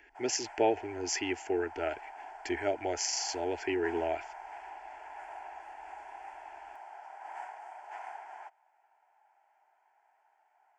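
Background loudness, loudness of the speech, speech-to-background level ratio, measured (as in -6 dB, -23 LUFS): -46.5 LUFS, -33.0 LUFS, 13.5 dB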